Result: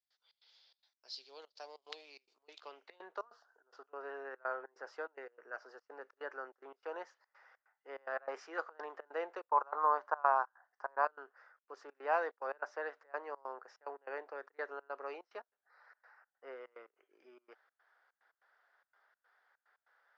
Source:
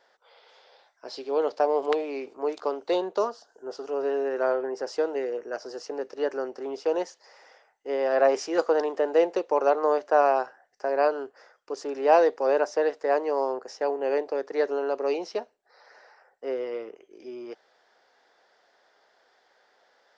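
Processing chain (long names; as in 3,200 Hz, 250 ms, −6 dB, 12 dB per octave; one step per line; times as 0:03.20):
0:09.49–0:11.05: graphic EQ with 15 bands 160 Hz +7 dB, 1,000 Hz +11 dB, 2,500 Hz −6 dB
gate pattern ".xx.xxx.x.xxxx" 145 BPM −24 dB
band-pass filter sweep 4,400 Hz → 1,400 Hz, 0:02.33–0:03.23
level −3 dB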